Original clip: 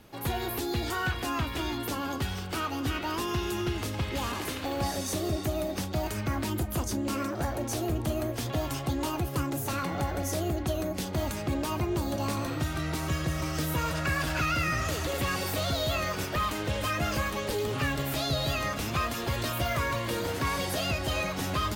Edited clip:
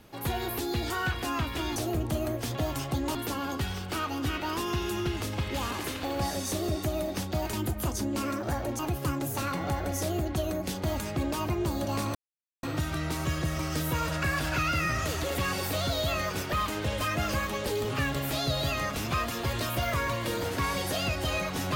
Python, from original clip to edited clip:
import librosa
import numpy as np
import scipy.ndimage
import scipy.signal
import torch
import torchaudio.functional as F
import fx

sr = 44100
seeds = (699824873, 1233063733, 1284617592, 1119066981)

y = fx.edit(x, sr, fx.cut(start_s=6.14, length_s=0.31),
    fx.move(start_s=7.71, length_s=1.39, to_s=1.76),
    fx.insert_silence(at_s=12.46, length_s=0.48), tone=tone)